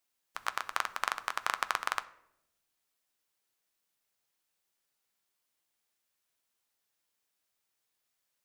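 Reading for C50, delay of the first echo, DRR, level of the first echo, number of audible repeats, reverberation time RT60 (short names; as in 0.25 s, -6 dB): 17.5 dB, none, 11.0 dB, none, none, 0.80 s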